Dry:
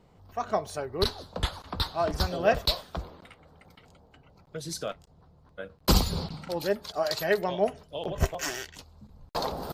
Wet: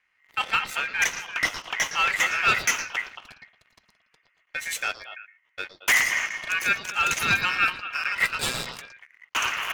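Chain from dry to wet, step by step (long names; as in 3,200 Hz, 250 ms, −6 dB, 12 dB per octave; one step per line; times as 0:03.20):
leveller curve on the samples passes 3
echo through a band-pass that steps 113 ms, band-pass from 2,600 Hz, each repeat −1.4 octaves, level −4 dB
ring modulation 2,000 Hz
level −3 dB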